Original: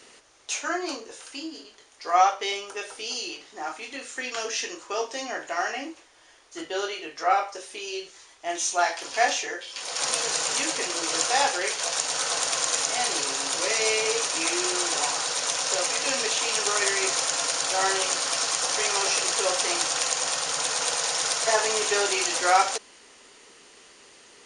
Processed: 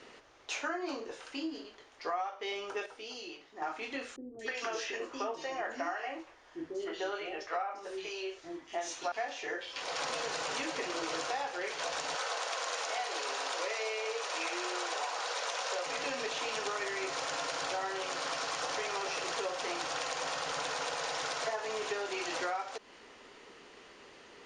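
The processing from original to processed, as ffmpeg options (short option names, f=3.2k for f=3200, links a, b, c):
-filter_complex "[0:a]asettb=1/sr,asplit=3[a][b][c];[a]atrim=end=4.164[d];[b]atrim=start=4.16:end=9.12,asetpts=PTS-STARTPTS,afade=t=in:d=0.004:c=qsin,afade=t=out:st=4.956:d=0.004:c=qsin,acrossover=split=370|3100[e][f][g];[g]adelay=230[h];[f]adelay=300[i];[e][i][h]amix=inputs=3:normalize=0,atrim=end_sample=218736[j];[c]atrim=start=9.116[k];[d][j]acrossfade=d=0.004:c1=hsin:c2=qsin[l];[l][k]acrossfade=d=0.004:c1=qsin:c2=hsin,asettb=1/sr,asplit=3[m][n][o];[m]atrim=end=12.154[p];[n]atrim=start=12.15:end=15.86,asetpts=PTS-STARTPTS,afade=t=in:d=0.004:c=qsin,afade=t=out:st=3.706:d=0.004:c=qsin,highpass=f=410:w=0.5412,highpass=f=410:w=1.3066[q];[o]atrim=start=15.856[r];[p][q]acrossfade=d=0.004:c1=hsin:c2=qsin[s];[s][r]acrossfade=d=0.004:c1=qsin:c2=hsin,asplit=3[t][u][v];[t]atrim=end=2.862[w];[u]atrim=start=2.858:end=3.622,asetpts=PTS-STARTPTS,volume=-7.5dB[x];[v]atrim=start=3.618[y];[w][x]acrossfade=d=0.004:c1=hsin:c2=hsin[z];[z][y]acrossfade=d=0.004:c1=hsin:c2=hsin,lowpass=5.7k,highshelf=f=3.7k:g=-11.5,acompressor=threshold=-33dB:ratio=16,volume=1dB"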